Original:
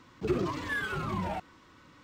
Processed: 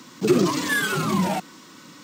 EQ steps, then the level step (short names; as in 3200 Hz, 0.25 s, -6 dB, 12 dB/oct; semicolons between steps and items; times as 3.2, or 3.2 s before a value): HPF 190 Hz 24 dB/oct; tone controls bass +11 dB, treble +15 dB; +8.5 dB